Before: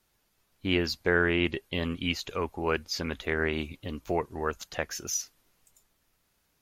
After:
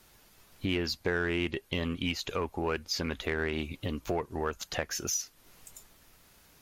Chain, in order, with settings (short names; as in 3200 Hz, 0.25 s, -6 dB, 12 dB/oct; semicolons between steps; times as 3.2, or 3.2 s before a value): in parallel at -6 dB: hard clip -25.5 dBFS, distortion -8 dB; on the sum: compressor 2.5:1, threshold -45 dBFS, peak gain reduction 17.5 dB; gain +9 dB